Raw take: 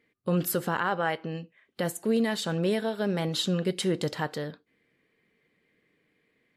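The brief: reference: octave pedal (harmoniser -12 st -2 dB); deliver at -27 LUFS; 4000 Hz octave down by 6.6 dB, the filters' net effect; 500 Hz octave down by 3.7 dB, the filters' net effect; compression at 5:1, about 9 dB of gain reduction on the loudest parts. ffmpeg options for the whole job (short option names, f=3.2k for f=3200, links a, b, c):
-filter_complex "[0:a]equalizer=f=500:t=o:g=-4.5,equalizer=f=4k:t=o:g=-8,acompressor=threshold=-33dB:ratio=5,asplit=2[a][b];[b]asetrate=22050,aresample=44100,atempo=2,volume=-2dB[c];[a][c]amix=inputs=2:normalize=0,volume=9dB"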